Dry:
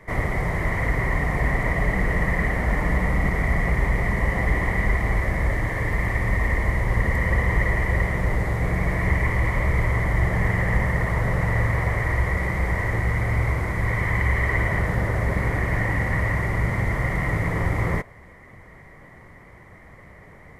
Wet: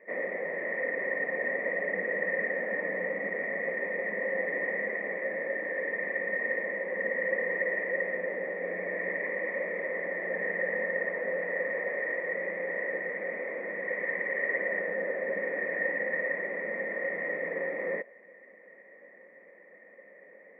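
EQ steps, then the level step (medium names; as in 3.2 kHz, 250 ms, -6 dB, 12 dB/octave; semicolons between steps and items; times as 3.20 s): cascade formant filter e; brick-wall FIR high-pass 180 Hz; +5.0 dB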